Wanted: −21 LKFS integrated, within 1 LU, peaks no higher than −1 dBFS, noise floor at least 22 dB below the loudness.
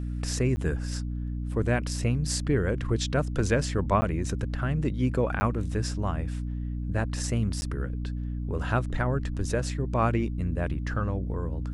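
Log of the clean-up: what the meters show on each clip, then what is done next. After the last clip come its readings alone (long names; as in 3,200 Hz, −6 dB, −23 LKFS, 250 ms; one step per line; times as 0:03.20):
number of dropouts 4; longest dropout 10 ms; mains hum 60 Hz; hum harmonics up to 300 Hz; level of the hum −29 dBFS; integrated loudness −29.0 LKFS; sample peak −10.5 dBFS; target loudness −21.0 LKFS
→ repair the gap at 0:00.56/0:04.01/0:05.40/0:07.61, 10 ms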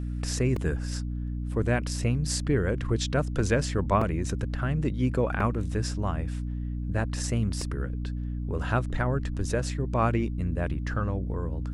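number of dropouts 0; mains hum 60 Hz; hum harmonics up to 300 Hz; level of the hum −29 dBFS
→ hum removal 60 Hz, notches 5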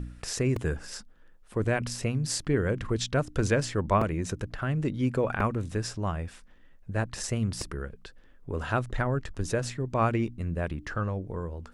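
mains hum none found; integrated loudness −30.0 LKFS; sample peak −11.5 dBFS; target loudness −21.0 LKFS
→ level +9 dB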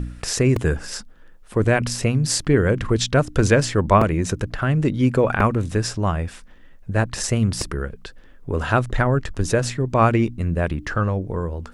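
integrated loudness −21.0 LKFS; sample peak −2.5 dBFS; background noise floor −45 dBFS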